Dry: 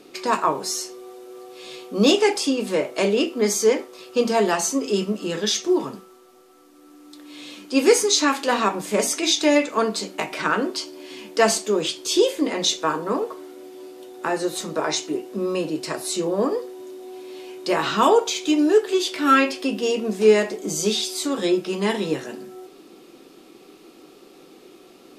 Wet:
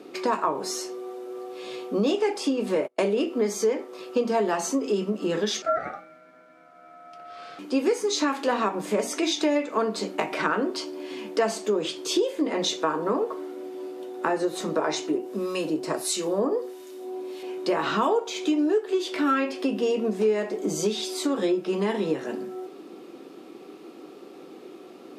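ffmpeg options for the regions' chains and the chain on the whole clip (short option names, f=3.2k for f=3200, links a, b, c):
-filter_complex "[0:a]asettb=1/sr,asplit=3[a][b][c];[a]atrim=end=2.754[d];[b]atrim=start=2.75:end=3.25,asetpts=PTS-STARTPTS,afade=t=in:d=0.004:c=qsin,afade=t=out:st=0.496:d=0.004:c=qsin,agate=range=-36dB:threshold=-29dB:ratio=16:release=100:detection=peak,equalizer=f=10k:t=o:w=0.36:g=8[e];[c]atrim=start=3.246[f];[d][e]acrossfade=d=0.004:c1=hsin:c2=qsin[g];[g][f]acrossfade=d=0.004:c1=qsin:c2=hsin,asettb=1/sr,asplit=3[h][i][j];[h]atrim=end=5.624[k];[i]atrim=start=5.62:end=7.59,asetpts=PTS-STARTPTS,afade=t=in:d=0.004:c=qsin,afade=t=out:st=1.966:d=0.004:c=qsin,aemphasis=mode=reproduction:type=50kf,aeval=exprs='val(0)*sin(2*PI*1000*n/s)':c=same[l];[j]atrim=start=7.586[m];[k][l]acrossfade=d=0.004:c1=hsin:c2=qsin[n];[n][m]acrossfade=d=0.004:c1=qsin:c2=hsin,asettb=1/sr,asplit=3[o][p][q];[o]atrim=end=15.184[r];[p]atrim=start=15.18:end=17.43,asetpts=PTS-STARTPTS,afade=t=in:d=0.004:c=qsin,afade=t=out:st=2.246:d=0.004:c=qsin,highshelf=f=3.7k:g=9.5,acrossover=split=1300[s][t];[s]aeval=exprs='val(0)*(1-0.7/2+0.7/2*cos(2*PI*1.5*n/s))':c=same[u];[t]aeval=exprs='val(0)*(1-0.7/2-0.7/2*cos(2*PI*1.5*n/s))':c=same[v];[u][v]amix=inputs=2:normalize=0[w];[q]atrim=start=17.426[x];[r][w]acrossfade=d=0.004:c1=hsin:c2=qsin[y];[y][x]acrossfade=d=0.004:c1=qsin:c2=hsin,highshelf=f=2.5k:g=-11.5,acompressor=threshold=-26dB:ratio=4,highpass=180,volume=4.5dB"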